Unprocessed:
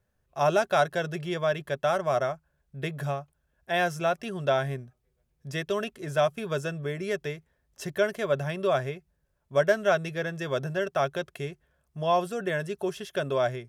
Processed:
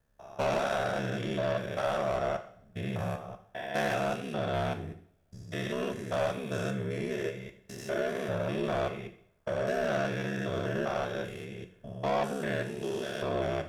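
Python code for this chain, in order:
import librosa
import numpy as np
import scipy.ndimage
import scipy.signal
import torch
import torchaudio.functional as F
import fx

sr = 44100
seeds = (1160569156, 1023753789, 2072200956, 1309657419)

y = fx.spec_steps(x, sr, hold_ms=200)
y = y * np.sin(2.0 * np.pi * 34.0 * np.arange(len(y)) / sr)
y = 10.0 ** (-29.5 / 20.0) * np.tanh(y / 10.0 ** (-29.5 / 20.0))
y = fx.rev_double_slope(y, sr, seeds[0], early_s=0.54, late_s=1.5, knee_db=-25, drr_db=6.0)
y = y * 10.0 ** (5.0 / 20.0)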